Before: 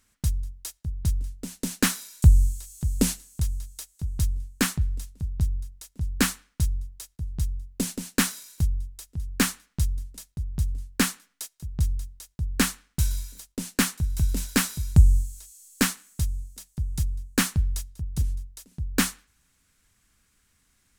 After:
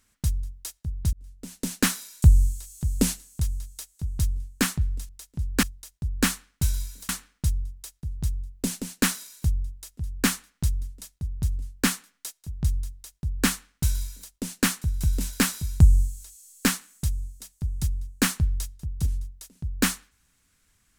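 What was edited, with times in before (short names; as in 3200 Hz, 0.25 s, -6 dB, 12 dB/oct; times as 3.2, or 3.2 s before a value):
1.13–1.65 fade in
5.09–5.71 cut
12–13.46 copy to 6.25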